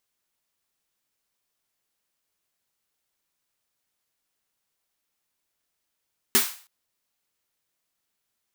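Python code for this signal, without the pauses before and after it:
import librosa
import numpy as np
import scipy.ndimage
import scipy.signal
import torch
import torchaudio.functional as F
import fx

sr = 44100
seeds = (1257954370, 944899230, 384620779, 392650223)

y = fx.drum_snare(sr, seeds[0], length_s=0.32, hz=240.0, second_hz=390.0, noise_db=8.5, noise_from_hz=830.0, decay_s=0.17, noise_decay_s=0.42)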